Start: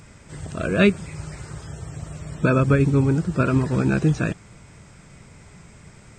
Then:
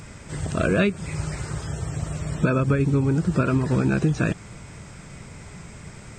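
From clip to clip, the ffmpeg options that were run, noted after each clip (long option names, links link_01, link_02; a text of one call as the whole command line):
ffmpeg -i in.wav -af "acompressor=threshold=-22dB:ratio=10,volume=5.5dB" out.wav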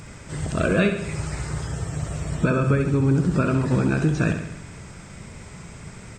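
ffmpeg -i in.wav -af "aecho=1:1:67|134|201|268|335|402|469:0.398|0.231|0.134|0.0777|0.0451|0.0261|0.0152" out.wav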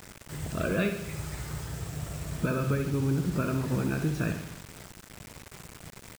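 ffmpeg -i in.wav -af "acrusher=bits=5:mix=0:aa=0.000001,volume=-8dB" out.wav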